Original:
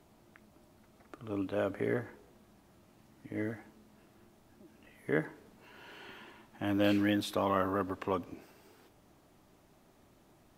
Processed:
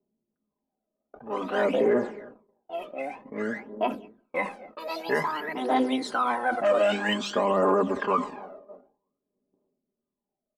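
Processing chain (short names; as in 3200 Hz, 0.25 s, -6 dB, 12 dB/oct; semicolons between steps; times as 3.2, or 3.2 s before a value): nonlinear frequency compression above 2600 Hz 1.5:1; comb 4.9 ms, depth 78%; tape echo 0.309 s, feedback 74%, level -20 dB, low-pass 2900 Hz; low-pass opened by the level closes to 300 Hz, open at -30 dBFS; notches 50/100/150/200 Hz; echoes that change speed 0.3 s, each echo +4 st, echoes 2, each echo -6 dB; phaser 0.52 Hz, delay 1.7 ms, feedback 68%; tilt +3 dB/oct; gate -56 dBFS, range -26 dB; ten-band EQ 250 Hz +9 dB, 500 Hz +9 dB, 1000 Hz +9 dB, 8000 Hz -5 dB; limiter -14.5 dBFS, peak gain reduction 10.5 dB; sustainer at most 140 dB/s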